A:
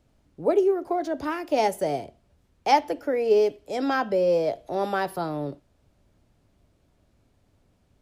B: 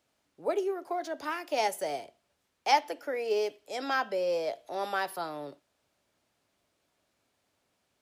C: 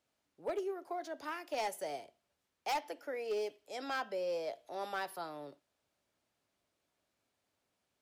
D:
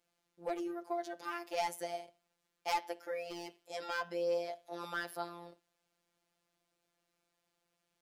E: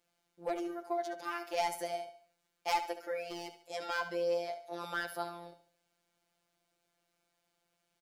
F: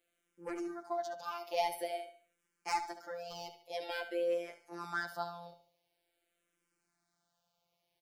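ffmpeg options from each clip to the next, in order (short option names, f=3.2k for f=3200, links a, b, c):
-af "highpass=f=1.2k:p=1"
-af "asoftclip=type=hard:threshold=-23.5dB,volume=-7dB"
-af "afftfilt=real='hypot(re,im)*cos(PI*b)':imag='0':win_size=1024:overlap=0.75,volume=4dB"
-af "aecho=1:1:71|142|213|284:0.251|0.1|0.0402|0.0161,volume=2dB"
-filter_complex "[0:a]asplit=2[a][b];[b]afreqshift=-0.48[c];[a][c]amix=inputs=2:normalize=1,volume=1dB"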